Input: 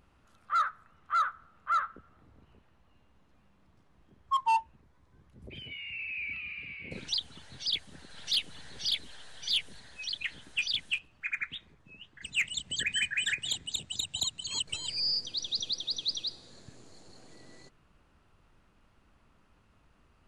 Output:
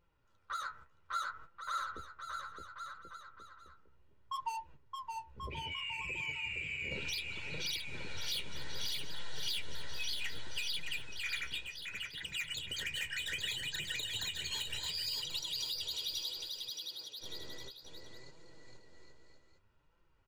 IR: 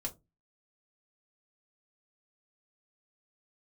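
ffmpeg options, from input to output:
-filter_complex "[0:a]equalizer=f=10k:t=o:w=0.51:g=-13,asoftclip=type=tanh:threshold=-33.5dB,asettb=1/sr,asplit=3[a][b][c];[a]atrim=end=14.794[d];[b]atrim=start=14.79:end=17.21,asetpts=PTS-STARTPTS,afade=t=in:d=0.004:c=qsin,afade=t=out:st=2.416:d=0.004:c=qsin,highpass=f=490:p=1[e];[c]atrim=start=17.206[f];[d][e]acrossfade=d=0.004:c1=hsin:c2=qsin[g];[g][f]acrossfade=d=0.004:c1=qsin:c2=hsin,agate=range=-14dB:threshold=-54dB:ratio=16:detection=peak,aecho=1:1:2.1:0.52,acompressor=threshold=-41dB:ratio=3,aecho=1:1:620|1085|1434|1695|1891:0.631|0.398|0.251|0.158|0.1,flanger=delay=5.8:depth=9.1:regen=39:speed=0.65:shape=sinusoidal,volume=6dB"

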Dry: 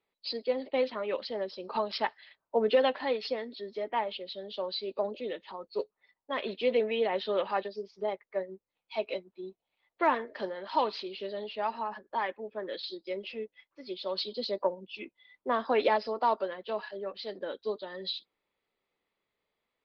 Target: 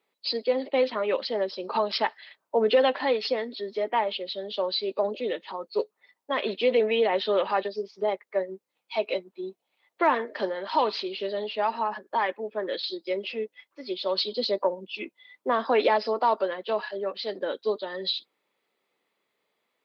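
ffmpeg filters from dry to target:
-filter_complex "[0:a]highpass=200,asplit=2[a][b];[b]alimiter=limit=-24dB:level=0:latency=1:release=60,volume=2dB[c];[a][c]amix=inputs=2:normalize=0"

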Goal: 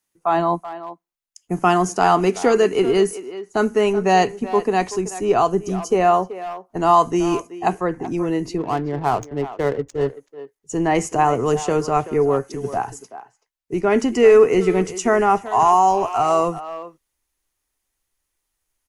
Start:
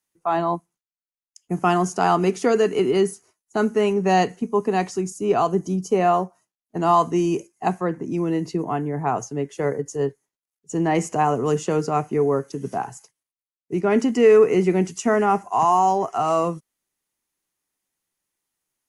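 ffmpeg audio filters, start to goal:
-filter_complex "[0:a]asubboost=boost=10:cutoff=53,asettb=1/sr,asplit=3[a][b][c];[a]atrim=end=8.584[d];[b]atrim=start=8.58:end=10.08,asetpts=PTS-STARTPTS,afade=t=in:d=0.004:c=qsin,afade=t=out:st=1.496:d=0.004:c=qsin,adynamicsmooth=sensitivity=7.5:basefreq=650[e];[c]atrim=start=10.076[f];[d][e]acrossfade=d=0.004:c1=hsin:c2=qsin[g];[g][f]acrossfade=d=0.004:c1=qsin:c2=hsin,asplit=2[h][i];[i]adelay=380,highpass=300,lowpass=3.4k,asoftclip=type=hard:threshold=-15dB,volume=-13dB[j];[h][j]amix=inputs=2:normalize=0,volume=3.5dB"

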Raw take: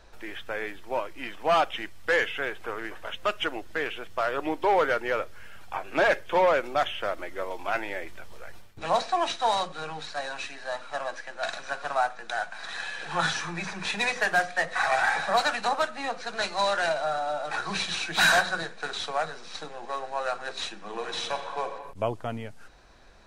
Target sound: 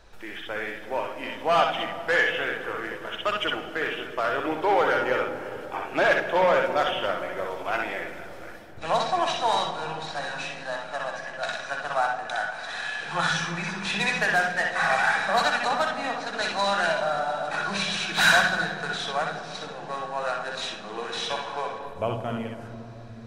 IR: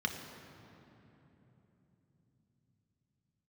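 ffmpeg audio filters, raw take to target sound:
-filter_complex "[0:a]asplit=2[a][b];[1:a]atrim=start_sample=2205,adelay=62[c];[b][c]afir=irnorm=-1:irlink=0,volume=-6.5dB[d];[a][d]amix=inputs=2:normalize=0"

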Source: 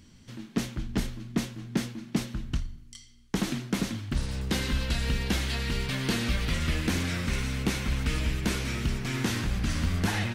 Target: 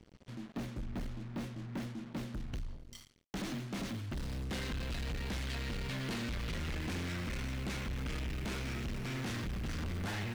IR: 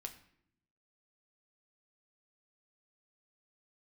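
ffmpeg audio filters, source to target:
-af "asetnsamples=n=441:p=0,asendcmd='2.37 lowpass f 4000',lowpass=f=1.5k:p=1,acrusher=bits=7:mix=0:aa=0.5,asoftclip=type=tanh:threshold=-33dB,volume=-2dB"

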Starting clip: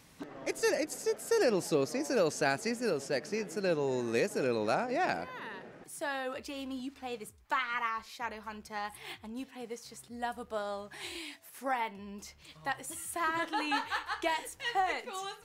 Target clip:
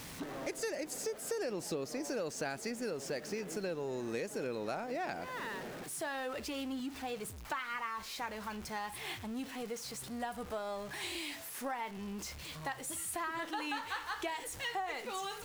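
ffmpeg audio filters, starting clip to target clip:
-af "aeval=exprs='val(0)+0.5*0.00668*sgn(val(0))':c=same,acompressor=threshold=-36dB:ratio=4"

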